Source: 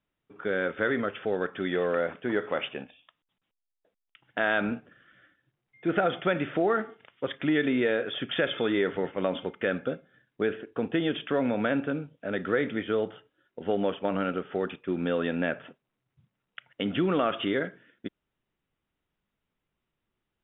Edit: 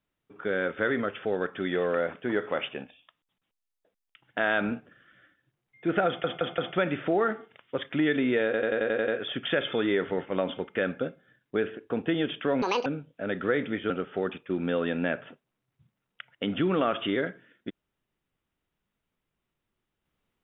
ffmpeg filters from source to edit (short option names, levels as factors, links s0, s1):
-filter_complex "[0:a]asplit=14[s0][s1][s2][s3][s4][s5][s6][s7][s8][s9][s10][s11][s12][s13];[s0]atrim=end=6.242[s14];[s1]atrim=start=6.068:end=6.242[s15];[s2]atrim=start=6.068:end=6.242[s16];[s3]atrim=start=6.068:end=8.032[s17];[s4]atrim=start=7.938:end=8.032[s18];[s5]atrim=start=7.938:end=8.032[s19];[s6]atrim=start=7.938:end=8.032[s20];[s7]atrim=start=7.938:end=8.032[s21];[s8]atrim=start=7.938:end=8.032[s22];[s9]atrim=start=7.938:end=8.032[s23];[s10]atrim=start=7.938:end=11.484[s24];[s11]atrim=start=11.48:end=11.9,asetpts=PTS-STARTPTS,asetrate=77175,aresample=44100[s25];[s12]atrim=start=11.896:end=12.942[s26];[s13]atrim=start=14.278[s27];[s14][s15]acrossfade=d=0.004:c1=hsin:c2=hsin[s28];[s28][s16]acrossfade=d=0.004:c1=hsin:c2=hsin[s29];[s29][s17]acrossfade=d=0.004:c1=hsin:c2=hsin[s30];[s30][s18]acrossfade=d=0.004:c1=hsin:c2=hsin[s31];[s31][s19]acrossfade=d=0.004:c1=hsin:c2=hsin[s32];[s32][s20]acrossfade=d=0.004:c1=hsin:c2=hsin[s33];[s33][s21]acrossfade=d=0.004:c1=hsin:c2=hsin[s34];[s34][s22]acrossfade=d=0.004:c1=hsin:c2=hsin[s35];[s35][s23]acrossfade=d=0.004:c1=hsin:c2=hsin[s36];[s36][s24]acrossfade=d=0.004:c1=hsin:c2=hsin[s37];[s37][s25]acrossfade=d=0.004:c1=hsin:c2=hsin[s38];[s38][s26]acrossfade=d=0.004:c1=hsin:c2=hsin[s39];[s39][s27]acrossfade=d=0.004:c1=hsin:c2=hsin"